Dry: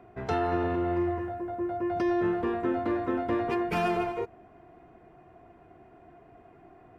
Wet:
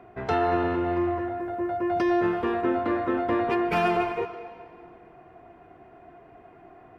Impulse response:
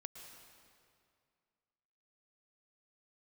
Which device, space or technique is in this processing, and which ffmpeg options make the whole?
filtered reverb send: -filter_complex "[0:a]asettb=1/sr,asplit=3[link_01][link_02][link_03];[link_01]atrim=end=1.404[link_04];[link_02]atrim=start=1.4:end=2.61,asetpts=PTS-STARTPTS,afade=type=in:duration=0.004:curve=qsin,afade=type=out:start_time=1.206:duration=0.004:curve=qsin,highshelf=frequency=4200:gain=6[link_05];[link_03]atrim=start=2.606[link_06];[link_04][link_05]acrossfade=duration=0.004:curve1=hsin:curve2=qsin[link_07];[link_07][link_06]acrossfade=duration=0.004:curve1=qsin:curve2=hsin,asplit=2[link_08][link_09];[link_09]highpass=frequency=490:poles=1,lowpass=4800[link_10];[1:a]atrim=start_sample=2205[link_11];[link_10][link_11]afir=irnorm=-1:irlink=0,volume=4dB[link_12];[link_08][link_12]amix=inputs=2:normalize=0"

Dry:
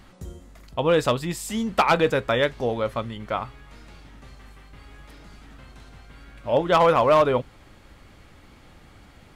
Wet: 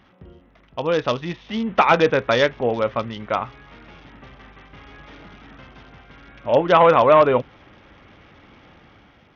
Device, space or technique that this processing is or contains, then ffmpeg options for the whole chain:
Bluetooth headset: -af "highpass=frequency=140:poles=1,dynaudnorm=framelen=870:gausssize=3:maxgain=9dB,aresample=8000,aresample=44100,volume=-2dB" -ar 48000 -c:a sbc -b:a 64k

